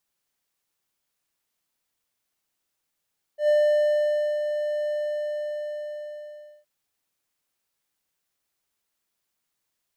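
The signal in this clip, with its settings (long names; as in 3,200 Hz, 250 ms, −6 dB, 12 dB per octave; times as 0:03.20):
note with an ADSR envelope triangle 597 Hz, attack 105 ms, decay 911 ms, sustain −8 dB, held 1.50 s, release 1,770 ms −14 dBFS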